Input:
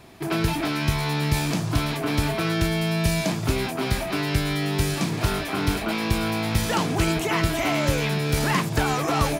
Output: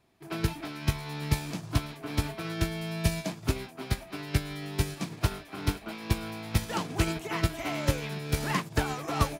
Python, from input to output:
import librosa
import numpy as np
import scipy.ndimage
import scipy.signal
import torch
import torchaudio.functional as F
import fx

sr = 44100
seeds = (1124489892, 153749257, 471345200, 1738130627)

y = fx.upward_expand(x, sr, threshold_db=-30.0, expansion=2.5)
y = y * librosa.db_to_amplitude(-1.5)